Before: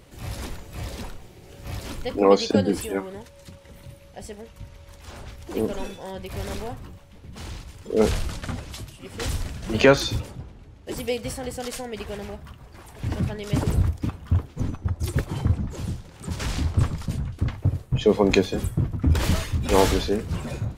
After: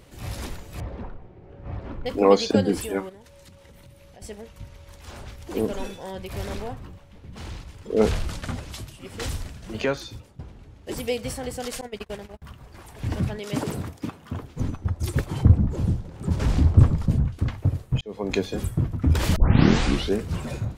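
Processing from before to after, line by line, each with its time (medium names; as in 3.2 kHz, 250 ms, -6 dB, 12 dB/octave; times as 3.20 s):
0.80–2.06 s: low-pass 1.3 kHz
3.09–4.22 s: compression 4:1, threshold -45 dBFS
6.46–8.28 s: treble shelf 5.6 kHz -7 dB
9.09–10.39 s: fade out quadratic, to -14 dB
11.81–12.42 s: gate -34 dBFS, range -34 dB
13.39–14.42 s: high-pass 190 Hz
15.43–17.28 s: tilt shelf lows +7 dB, about 1.1 kHz
18.01–18.71 s: fade in
19.36 s: tape start 0.78 s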